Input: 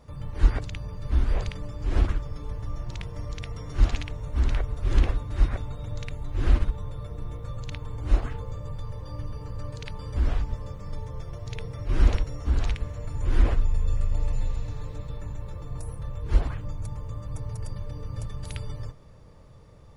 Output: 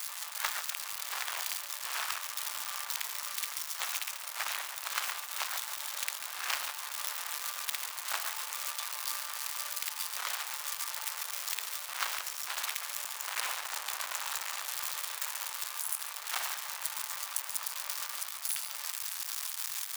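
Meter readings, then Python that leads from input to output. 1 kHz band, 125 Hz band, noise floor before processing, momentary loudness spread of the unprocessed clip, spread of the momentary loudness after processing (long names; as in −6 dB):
+3.0 dB, below −40 dB, −48 dBFS, 12 LU, 2 LU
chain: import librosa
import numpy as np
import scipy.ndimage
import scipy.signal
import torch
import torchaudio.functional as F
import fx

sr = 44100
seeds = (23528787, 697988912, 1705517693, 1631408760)

y = x + 0.5 * 10.0 ** (-21.5 / 20.0) * np.diff(np.sign(x), prepend=np.sign(x[:1]))
y = fx.quant_companded(y, sr, bits=4)
y = scipy.signal.sosfilt(scipy.signal.butter(4, 910.0, 'highpass', fs=sr, output='sos'), y)
y = fx.rider(y, sr, range_db=10, speed_s=0.5)
y = y + 10.0 ** (-10.5 / 20.0) * np.pad(y, (int(141 * sr / 1000.0), 0))[:len(y)]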